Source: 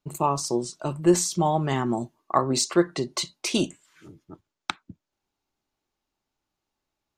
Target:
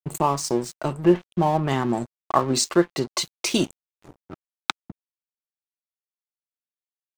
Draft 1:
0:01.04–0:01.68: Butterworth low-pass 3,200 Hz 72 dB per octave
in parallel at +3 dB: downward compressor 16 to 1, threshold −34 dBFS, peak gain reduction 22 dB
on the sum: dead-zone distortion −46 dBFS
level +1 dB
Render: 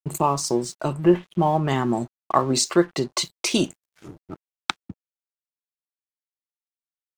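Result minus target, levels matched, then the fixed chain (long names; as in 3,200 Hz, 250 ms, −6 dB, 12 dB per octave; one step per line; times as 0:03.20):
dead-zone distortion: distortion −8 dB
0:01.04–0:01.68: Butterworth low-pass 3,200 Hz 72 dB per octave
in parallel at +3 dB: downward compressor 16 to 1, threshold −34 dBFS, peak gain reduction 22 dB
on the sum: dead-zone distortion −37 dBFS
level +1 dB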